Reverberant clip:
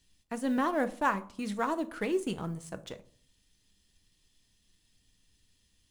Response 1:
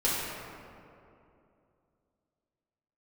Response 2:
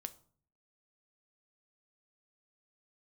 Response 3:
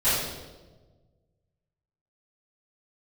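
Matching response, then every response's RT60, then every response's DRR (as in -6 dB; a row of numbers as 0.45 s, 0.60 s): 2; 2.7 s, 0.50 s, 1.3 s; -9.5 dB, 10.5 dB, -17.0 dB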